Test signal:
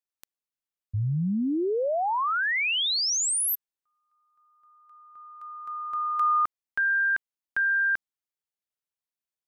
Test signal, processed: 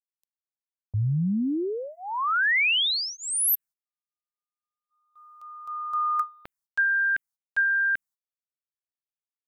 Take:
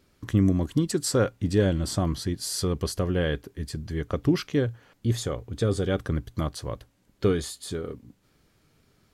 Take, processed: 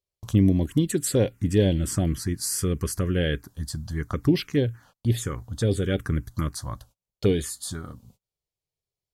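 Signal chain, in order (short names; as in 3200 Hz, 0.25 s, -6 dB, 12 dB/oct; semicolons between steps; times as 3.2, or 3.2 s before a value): gate -51 dBFS, range -29 dB; high shelf 2800 Hz +5 dB; envelope phaser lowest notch 250 Hz, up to 1300 Hz, full sweep at -19 dBFS; gain +2.5 dB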